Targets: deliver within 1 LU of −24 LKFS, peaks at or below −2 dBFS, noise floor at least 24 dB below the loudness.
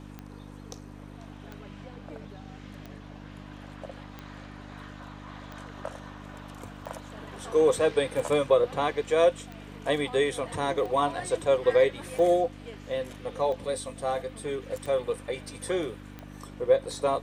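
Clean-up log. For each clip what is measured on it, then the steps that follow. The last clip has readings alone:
number of clicks 13; mains hum 50 Hz; hum harmonics up to 300 Hz; level of the hum −42 dBFS; integrated loudness −27.0 LKFS; sample peak −10.0 dBFS; target loudness −24.0 LKFS
→ click removal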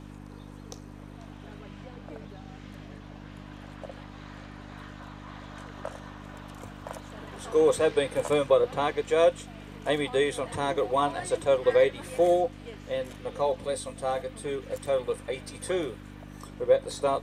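number of clicks 0; mains hum 50 Hz; hum harmonics up to 300 Hz; level of the hum −42 dBFS
→ hum removal 50 Hz, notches 6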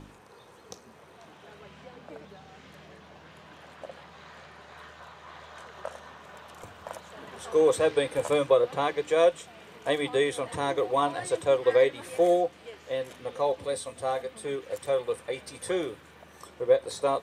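mains hum none found; integrated loudness −27.0 LKFS; sample peak −10.0 dBFS; target loudness −24.0 LKFS
→ level +3 dB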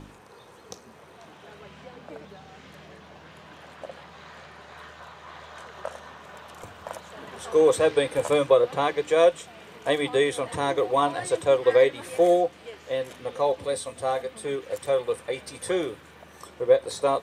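integrated loudness −24.0 LKFS; sample peak −7.0 dBFS; background noise floor −50 dBFS

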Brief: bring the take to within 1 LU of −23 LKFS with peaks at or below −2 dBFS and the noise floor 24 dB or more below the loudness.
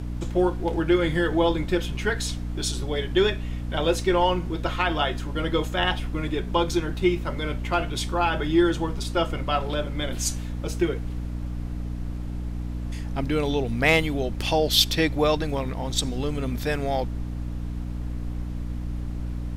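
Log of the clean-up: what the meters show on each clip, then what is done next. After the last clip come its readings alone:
mains hum 60 Hz; hum harmonics up to 300 Hz; level of the hum −28 dBFS; background noise floor −31 dBFS; target noise floor −50 dBFS; integrated loudness −25.5 LKFS; sample peak −7.0 dBFS; target loudness −23.0 LKFS
→ hum removal 60 Hz, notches 5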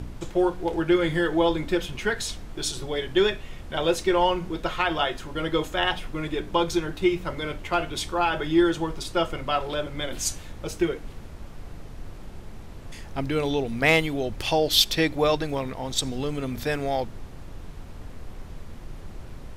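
mains hum none found; background noise floor −41 dBFS; target noise floor −50 dBFS
→ noise reduction from a noise print 9 dB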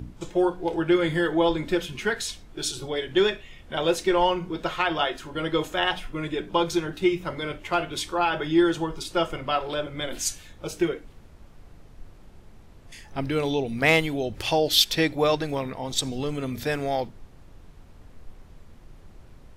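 background noise floor −50 dBFS; integrated loudness −25.5 LKFS; sample peak −7.5 dBFS; target loudness −23.0 LKFS
→ level +2.5 dB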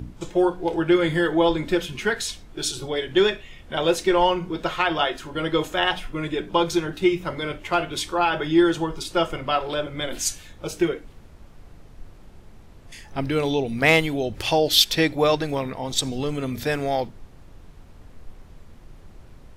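integrated loudness −23.0 LKFS; sample peak −5.0 dBFS; background noise floor −47 dBFS

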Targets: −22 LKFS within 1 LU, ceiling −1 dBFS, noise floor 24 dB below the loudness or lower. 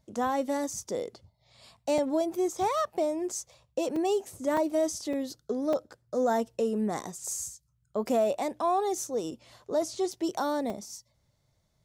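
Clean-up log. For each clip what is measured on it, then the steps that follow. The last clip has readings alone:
number of dropouts 7; longest dropout 3.3 ms; integrated loudness −30.5 LKFS; sample peak −16.5 dBFS; target loudness −22.0 LKFS
→ repair the gap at 0:01.98/0:03.96/0:04.57/0:05.13/0:05.73/0:10.12/0:10.70, 3.3 ms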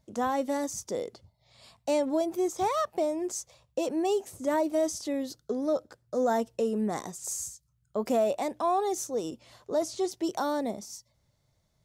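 number of dropouts 0; integrated loudness −30.5 LKFS; sample peak −16.5 dBFS; target loudness −22.0 LKFS
→ level +8.5 dB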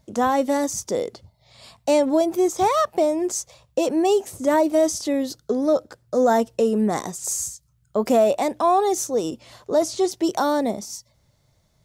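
integrated loudness −22.0 LKFS; sample peak −8.0 dBFS; background noise floor −64 dBFS

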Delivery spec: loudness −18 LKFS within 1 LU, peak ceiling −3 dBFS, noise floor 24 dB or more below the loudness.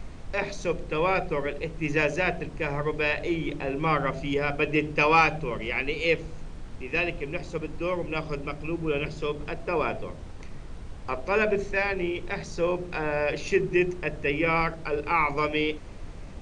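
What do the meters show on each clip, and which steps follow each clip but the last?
background noise floor −40 dBFS; target noise floor −51 dBFS; integrated loudness −27.0 LKFS; sample peak −8.0 dBFS; target loudness −18.0 LKFS
→ noise reduction from a noise print 11 dB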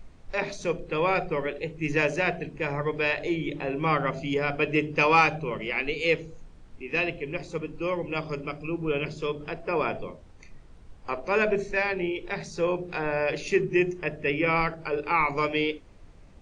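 background noise floor −50 dBFS; target noise floor −52 dBFS
→ noise reduction from a noise print 6 dB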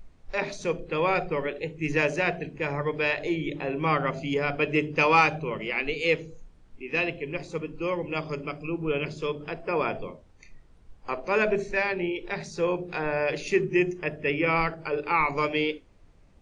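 background noise floor −55 dBFS; integrated loudness −27.5 LKFS; sample peak −8.0 dBFS; target loudness −18.0 LKFS
→ level +9.5 dB
brickwall limiter −3 dBFS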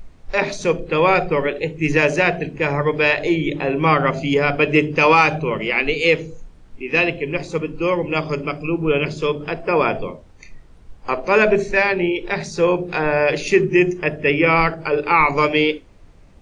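integrated loudness −18.5 LKFS; sample peak −3.0 dBFS; background noise floor −45 dBFS

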